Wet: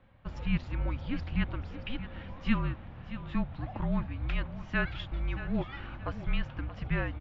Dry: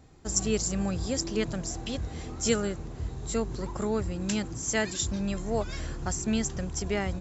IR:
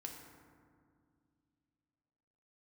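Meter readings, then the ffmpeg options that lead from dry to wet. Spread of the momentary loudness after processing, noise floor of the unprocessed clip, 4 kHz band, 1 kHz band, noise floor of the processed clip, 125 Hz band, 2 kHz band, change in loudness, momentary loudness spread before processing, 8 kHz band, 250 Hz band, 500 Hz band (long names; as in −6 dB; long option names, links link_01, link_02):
8 LU, −40 dBFS, −9.0 dB, −3.0 dB, −47 dBFS, −0.5 dB, 0.0 dB, −4.5 dB, 7 LU, can't be measured, −4.0 dB, −12.0 dB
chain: -af "highpass=frequency=160:width_type=q:width=0.5412,highpass=frequency=160:width_type=q:width=1.307,lowpass=frequency=3300:width_type=q:width=0.5176,lowpass=frequency=3300:width_type=q:width=0.7071,lowpass=frequency=3300:width_type=q:width=1.932,afreqshift=-250,equalizer=frequency=420:width=5.4:gain=-13,aecho=1:1:627|1254|1881:0.224|0.0649|0.0188"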